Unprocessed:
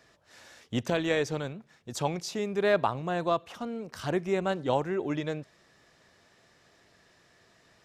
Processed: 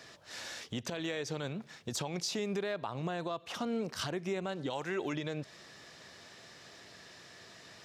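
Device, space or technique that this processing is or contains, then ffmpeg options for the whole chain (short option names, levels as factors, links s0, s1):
broadcast voice chain: -filter_complex "[0:a]asettb=1/sr,asplit=3[s0][s1][s2];[s0]atrim=end=4.704[s3];[s1]atrim=start=4.7:end=5.13,asetpts=PTS-STARTPTS,afade=t=in:d=0.004:c=qsin,afade=t=out:st=0.426:d=0.004:c=qsin,tiltshelf=f=970:g=-5.5[s4];[s2]atrim=start=5.126[s5];[s3][s4]acrossfade=d=0.004:c1=hsin:c2=qsin[s6];[s6][s5]acrossfade=d=0.004:c1=qsin:c2=hsin,highpass=79,deesser=0.75,acompressor=threshold=0.0141:ratio=4,equalizer=f=4400:t=o:w=1.7:g=5.5,alimiter=level_in=2.51:limit=0.0631:level=0:latency=1:release=117,volume=0.398,volume=2.11"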